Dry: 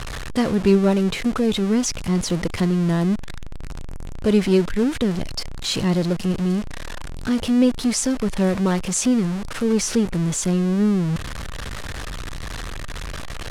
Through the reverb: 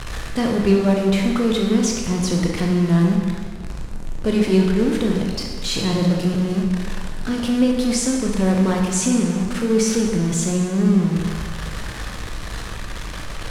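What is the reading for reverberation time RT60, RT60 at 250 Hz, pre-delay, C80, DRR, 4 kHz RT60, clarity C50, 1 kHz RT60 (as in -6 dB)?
1.8 s, 1.8 s, 17 ms, 4.0 dB, 0.0 dB, 1.4 s, 2.0 dB, 1.8 s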